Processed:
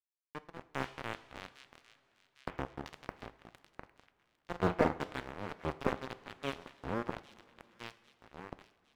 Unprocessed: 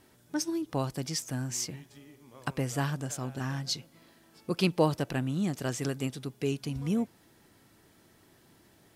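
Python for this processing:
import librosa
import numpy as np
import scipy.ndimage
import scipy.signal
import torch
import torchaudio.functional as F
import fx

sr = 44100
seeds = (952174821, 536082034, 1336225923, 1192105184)

y = fx.cycle_switch(x, sr, every=2, mode='muted')
y = fx.filter_lfo_lowpass(y, sr, shape='saw_down', hz=1.4, low_hz=400.0, high_hz=3500.0, q=1.2)
y = fx.power_curve(y, sr, exponent=2.0)
y = fx.echo_pitch(y, sr, ms=146, semitones=-3, count=3, db_per_echo=-6.0)
y = np.sign(y) * np.maximum(np.abs(y) - 10.0 ** (-42.5 / 20.0), 0.0)
y = fx.transient(y, sr, attack_db=-6, sustain_db=-1)
y = fx.doubler(y, sr, ms=40.0, db=-9.0, at=(3.78, 4.99))
y = fx.echo_wet_highpass(y, sr, ms=804, feedback_pct=50, hz=2200.0, wet_db=-19.0)
y = fx.rev_double_slope(y, sr, seeds[0], early_s=0.52, late_s=3.7, knee_db=-15, drr_db=13.5)
y = fx.slew_limit(y, sr, full_power_hz=17.0)
y = y * 10.0 ** (13.0 / 20.0)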